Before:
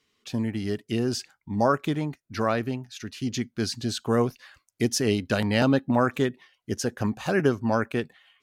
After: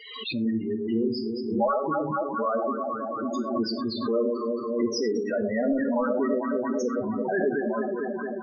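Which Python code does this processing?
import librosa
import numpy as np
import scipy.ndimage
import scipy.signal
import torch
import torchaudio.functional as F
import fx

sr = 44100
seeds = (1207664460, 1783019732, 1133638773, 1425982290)

p1 = fx.fade_out_tail(x, sr, length_s=1.2)
p2 = fx.highpass(p1, sr, hz=530.0, slope=6)
p3 = fx.echo_alternate(p2, sr, ms=111, hz=950.0, feedback_pct=90, wet_db=-4.5)
p4 = fx.fold_sine(p3, sr, drive_db=12, ceiling_db=-9.0)
p5 = p3 + F.gain(torch.from_numpy(p4), -9.5).numpy()
p6 = fx.spec_topn(p5, sr, count=8)
p7 = fx.rev_gated(p6, sr, seeds[0], gate_ms=140, shape='falling', drr_db=6.5)
p8 = fx.pre_swell(p7, sr, db_per_s=58.0)
y = F.gain(torch.from_numpy(p8), -5.0).numpy()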